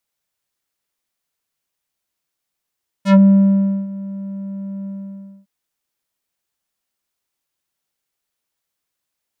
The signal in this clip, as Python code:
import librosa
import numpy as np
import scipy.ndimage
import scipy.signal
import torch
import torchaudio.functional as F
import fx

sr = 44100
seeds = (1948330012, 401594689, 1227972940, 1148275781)

y = fx.sub_voice(sr, note=55, wave='square', cutoff_hz=330.0, q=0.83, env_oct=5.5, env_s=0.13, attack_ms=89.0, decay_s=0.73, sustain_db=-19.5, release_s=0.6, note_s=1.81, slope=12)